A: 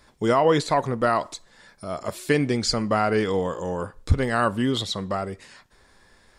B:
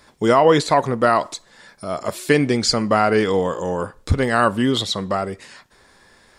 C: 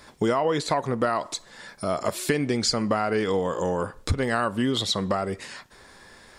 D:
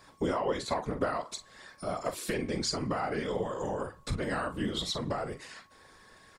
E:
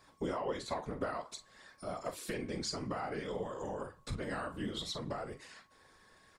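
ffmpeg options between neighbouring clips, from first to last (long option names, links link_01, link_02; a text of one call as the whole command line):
ffmpeg -i in.wav -af "lowshelf=frequency=72:gain=-10.5,volume=5.5dB" out.wav
ffmpeg -i in.wav -af "acompressor=threshold=-24dB:ratio=5,volume=2.5dB" out.wav
ffmpeg -i in.wav -filter_complex "[0:a]asplit=2[link_01][link_02];[link_02]adelay=43,volume=-10.5dB[link_03];[link_01][link_03]amix=inputs=2:normalize=0,afftfilt=real='hypot(re,im)*cos(2*PI*random(0))':imag='hypot(re,im)*sin(2*PI*random(1))':win_size=512:overlap=0.75,aeval=exprs='val(0)+0.001*sin(2*PI*1100*n/s)':channel_layout=same,volume=-2dB" out.wav
ffmpeg -i in.wav -af "flanger=delay=2.4:depth=9.9:regen=-79:speed=0.56:shape=triangular,volume=-2dB" out.wav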